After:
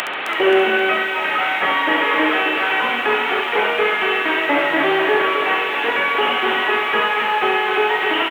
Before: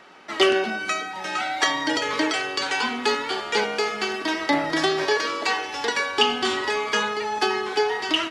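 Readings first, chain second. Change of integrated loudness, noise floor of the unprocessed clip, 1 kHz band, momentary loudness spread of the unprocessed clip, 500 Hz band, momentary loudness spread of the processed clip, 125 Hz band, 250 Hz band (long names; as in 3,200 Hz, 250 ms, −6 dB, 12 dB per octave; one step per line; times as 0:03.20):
+6.5 dB, −34 dBFS, +7.0 dB, 5 LU, +5.5 dB, 2 LU, 0.0 dB, +3.5 dB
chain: linear delta modulator 16 kbit/s, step −30 dBFS
high-pass filter 300 Hz 12 dB per octave
high-shelf EQ 2,200 Hz +11.5 dB
mains-hum notches 50/100/150/200/250/300/350/400/450 Hz
upward compression, threshold −26 dBFS
on a send: repeating echo 68 ms, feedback 19%, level −6.5 dB
on the sum: feedback echo at a low word length 264 ms, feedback 35%, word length 8 bits, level −6.5 dB
level +5 dB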